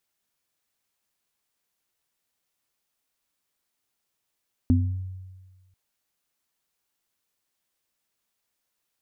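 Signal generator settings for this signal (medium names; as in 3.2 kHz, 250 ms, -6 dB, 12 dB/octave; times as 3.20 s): sine partials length 1.04 s, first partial 93.3 Hz, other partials 253 Hz, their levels 1 dB, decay 1.42 s, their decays 0.40 s, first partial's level -16.5 dB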